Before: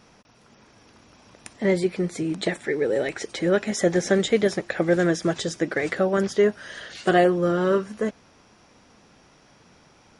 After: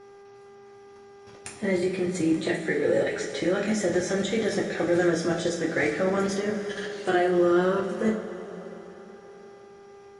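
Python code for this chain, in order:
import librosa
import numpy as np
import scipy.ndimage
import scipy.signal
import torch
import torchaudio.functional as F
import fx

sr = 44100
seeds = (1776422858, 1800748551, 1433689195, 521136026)

y = fx.level_steps(x, sr, step_db=13)
y = fx.rev_double_slope(y, sr, seeds[0], early_s=0.33, late_s=4.1, knee_db=-17, drr_db=-2.5)
y = fx.dmg_buzz(y, sr, base_hz=400.0, harmonics=5, level_db=-49.0, tilt_db=-9, odd_only=False)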